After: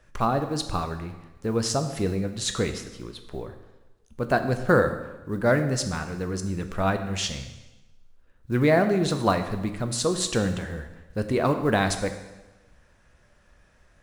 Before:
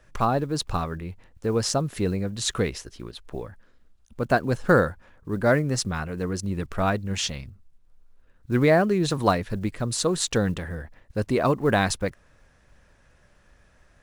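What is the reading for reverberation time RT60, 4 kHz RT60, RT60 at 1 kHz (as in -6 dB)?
1.1 s, 1.0 s, 1.1 s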